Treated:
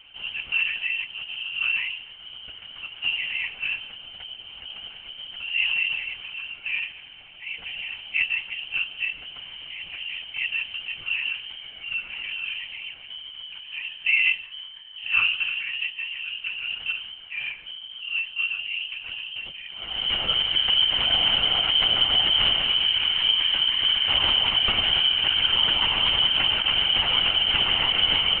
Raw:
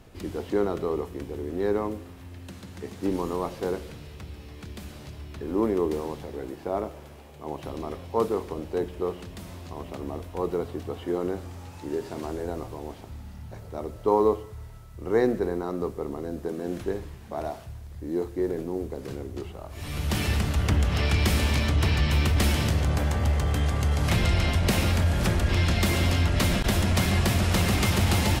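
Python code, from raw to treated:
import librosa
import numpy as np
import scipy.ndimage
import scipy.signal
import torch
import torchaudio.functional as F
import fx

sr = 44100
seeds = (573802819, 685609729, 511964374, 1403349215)

y = fx.freq_invert(x, sr, carrier_hz=3100)
y = fx.lpc_vocoder(y, sr, seeds[0], excitation='whisper', order=10)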